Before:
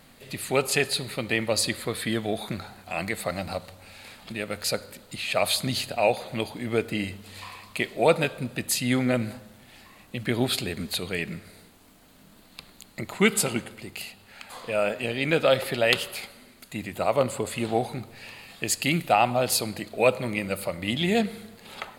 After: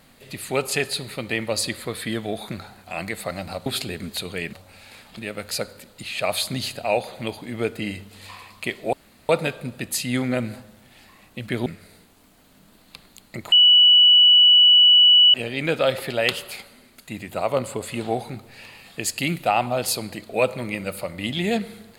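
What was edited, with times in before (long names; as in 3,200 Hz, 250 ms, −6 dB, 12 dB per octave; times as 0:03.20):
0:08.06: splice in room tone 0.36 s
0:10.43–0:11.30: move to 0:03.66
0:13.16–0:14.98: beep over 2,950 Hz −9.5 dBFS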